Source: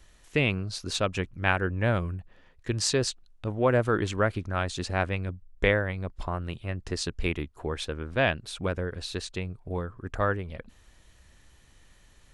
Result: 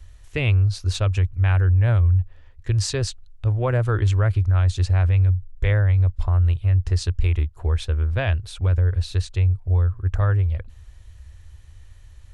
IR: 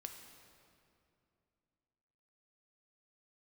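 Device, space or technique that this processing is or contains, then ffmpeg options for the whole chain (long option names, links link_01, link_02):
car stereo with a boomy subwoofer: -af "lowshelf=frequency=130:width_type=q:width=3:gain=12,alimiter=limit=-12.5dB:level=0:latency=1:release=19"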